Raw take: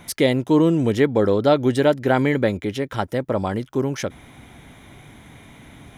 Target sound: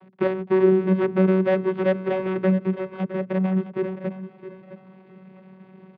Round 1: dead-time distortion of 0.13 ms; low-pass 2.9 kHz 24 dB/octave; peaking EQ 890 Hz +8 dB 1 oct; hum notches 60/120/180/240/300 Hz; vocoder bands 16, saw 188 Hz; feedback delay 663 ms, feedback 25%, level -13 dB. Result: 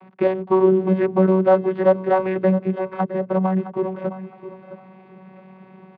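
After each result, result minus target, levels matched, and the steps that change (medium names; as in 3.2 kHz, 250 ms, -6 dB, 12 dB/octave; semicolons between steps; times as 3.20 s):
dead-time distortion: distortion -9 dB; 1 kHz band +6.0 dB
change: dead-time distortion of 0.36 ms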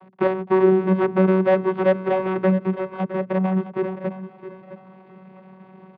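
1 kHz band +5.0 dB
remove: peaking EQ 890 Hz +8 dB 1 oct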